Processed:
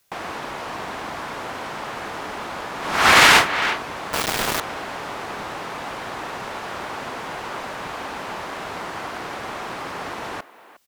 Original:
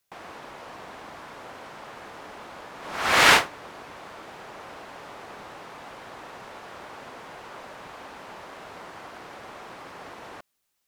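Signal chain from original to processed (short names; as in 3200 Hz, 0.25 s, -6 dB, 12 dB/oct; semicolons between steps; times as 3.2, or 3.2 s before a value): dynamic EQ 540 Hz, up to -4 dB, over -47 dBFS, Q 2; 4.13–4.6 companded quantiser 2-bit; speakerphone echo 0.36 s, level -16 dB; maximiser +12.5 dB; gain -1 dB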